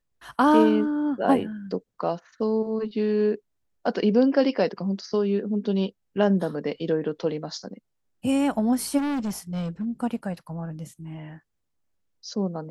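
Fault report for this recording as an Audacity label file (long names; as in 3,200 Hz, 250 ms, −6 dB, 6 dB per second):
8.970000	9.870000	clipping −24.5 dBFS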